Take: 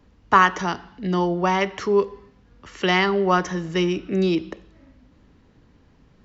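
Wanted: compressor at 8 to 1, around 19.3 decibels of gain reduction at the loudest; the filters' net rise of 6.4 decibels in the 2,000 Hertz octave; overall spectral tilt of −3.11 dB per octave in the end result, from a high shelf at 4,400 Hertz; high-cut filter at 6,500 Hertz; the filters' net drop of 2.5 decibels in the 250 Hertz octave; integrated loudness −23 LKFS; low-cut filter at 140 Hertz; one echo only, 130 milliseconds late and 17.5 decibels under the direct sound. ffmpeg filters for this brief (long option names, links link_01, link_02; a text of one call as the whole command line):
ffmpeg -i in.wav -af "highpass=140,lowpass=6500,equalizer=frequency=250:width_type=o:gain=-3.5,equalizer=frequency=2000:width_type=o:gain=7,highshelf=frequency=4400:gain=4.5,acompressor=threshold=-27dB:ratio=8,aecho=1:1:130:0.133,volume=8.5dB" out.wav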